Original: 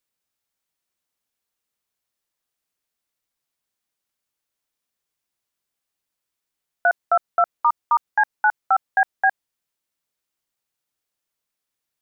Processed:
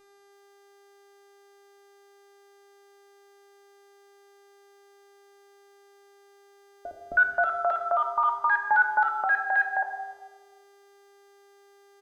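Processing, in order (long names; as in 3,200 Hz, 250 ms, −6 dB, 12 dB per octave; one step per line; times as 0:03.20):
transient designer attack +6 dB, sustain −6 dB
three-band delay without the direct sound lows, highs, mids 320/530 ms, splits 380/1,400 Hz
hum with harmonics 400 Hz, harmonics 31, −60 dBFS −6 dB per octave
brickwall limiter −17 dBFS, peak gain reduction 11 dB
on a send at −1.5 dB: convolution reverb RT60 1.4 s, pre-delay 3 ms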